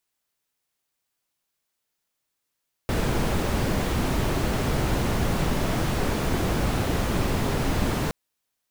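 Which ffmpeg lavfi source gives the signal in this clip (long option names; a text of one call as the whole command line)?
ffmpeg -f lavfi -i "anoisesrc=color=brown:amplitude=0.313:duration=5.22:sample_rate=44100:seed=1" out.wav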